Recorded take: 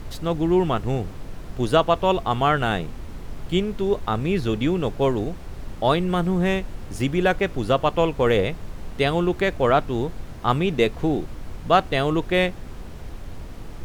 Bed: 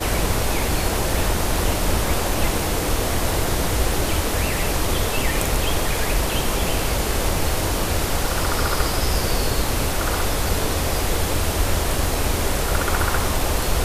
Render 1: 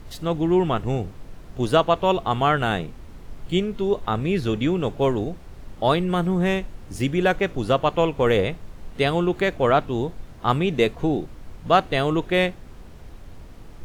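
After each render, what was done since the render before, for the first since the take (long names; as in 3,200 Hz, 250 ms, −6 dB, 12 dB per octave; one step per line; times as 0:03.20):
noise reduction from a noise print 6 dB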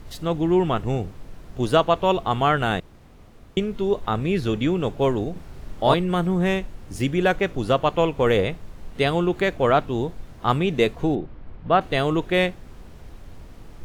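0:02.80–0:03.57: fill with room tone
0:05.32–0:05.94: double-tracking delay 38 ms −2 dB
0:11.15–0:11.81: high-frequency loss of the air 340 metres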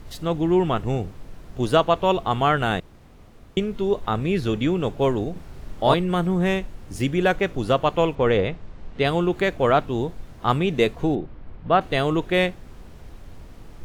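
0:08.15–0:09.05: high-frequency loss of the air 110 metres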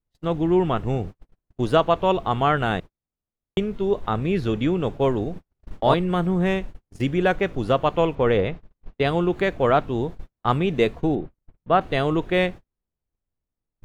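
noise gate −31 dBFS, range −44 dB
high-shelf EQ 4,600 Hz −8.5 dB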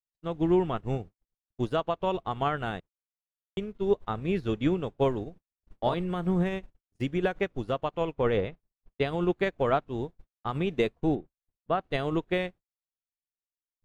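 brickwall limiter −13 dBFS, peak gain reduction 8.5 dB
expander for the loud parts 2.5 to 1, over −39 dBFS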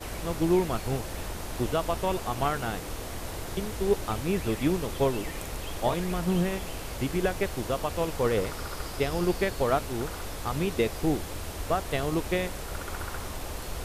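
mix in bed −15 dB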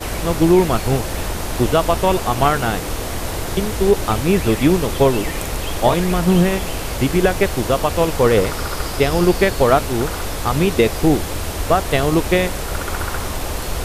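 level +12 dB
brickwall limiter −3 dBFS, peak gain reduction 2.5 dB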